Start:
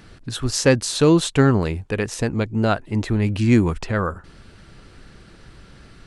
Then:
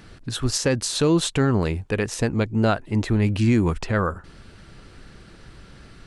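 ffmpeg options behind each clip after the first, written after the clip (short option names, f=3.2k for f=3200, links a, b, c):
-af "alimiter=limit=-10dB:level=0:latency=1:release=100"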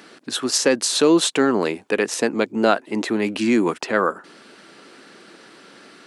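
-af "highpass=f=250:w=0.5412,highpass=f=250:w=1.3066,volume=5dB"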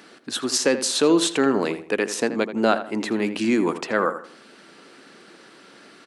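-filter_complex "[0:a]asplit=2[a][b];[b]adelay=81,lowpass=f=2.6k:p=1,volume=-11dB,asplit=2[c][d];[d]adelay=81,lowpass=f=2.6k:p=1,volume=0.33,asplit=2[e][f];[f]adelay=81,lowpass=f=2.6k:p=1,volume=0.33,asplit=2[g][h];[h]adelay=81,lowpass=f=2.6k:p=1,volume=0.33[i];[a][c][e][g][i]amix=inputs=5:normalize=0,volume=-2.5dB"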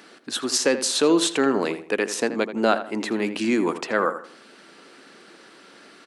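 -af "lowshelf=f=110:g=-10"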